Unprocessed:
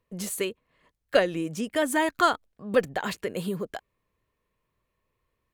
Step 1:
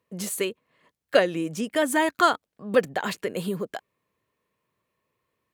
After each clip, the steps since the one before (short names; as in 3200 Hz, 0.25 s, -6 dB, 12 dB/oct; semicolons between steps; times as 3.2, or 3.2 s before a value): HPF 130 Hz 12 dB/oct; gain +2 dB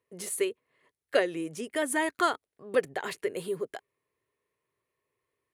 thirty-one-band EQ 200 Hz -11 dB, 400 Hz +8 dB, 2000 Hz +5 dB, 10000 Hz +9 dB, 16000 Hz -9 dB; gain -7 dB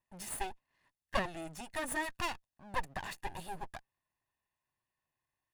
minimum comb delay 1.1 ms; gain -5 dB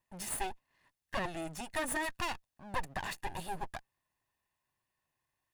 limiter -28 dBFS, peak gain reduction 9 dB; gain +3.5 dB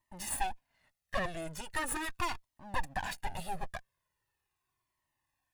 cascading flanger falling 0.4 Hz; gain +5 dB